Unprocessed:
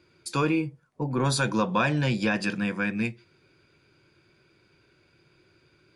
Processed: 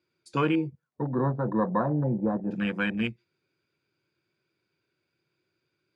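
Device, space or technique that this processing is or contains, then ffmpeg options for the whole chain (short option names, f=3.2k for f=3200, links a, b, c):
over-cleaned archive recording: -filter_complex "[0:a]highshelf=f=5.4k:g=4.5,asettb=1/sr,asplit=3[a][b][c];[a]atrim=end=1.024[d];[b]atrim=start=1.02:end=2.51,asetpts=PTS-STARTPTS,afade=t=in:d=0.004:c=qsin,afade=t=out:st=1.486:d=0.004:c=qsin,lowpass=f=1.1k:w=0.5412,lowpass=f=1.1k:w=1.3066[e];[c]atrim=start=2.506[f];[d][e]acrossfade=d=0.004:c1=hsin:c2=qsin[g];[g][f]acrossfade=d=0.004:c1=qsin:c2=hsin,highpass=110,lowpass=7.8k,afwtdn=0.0224"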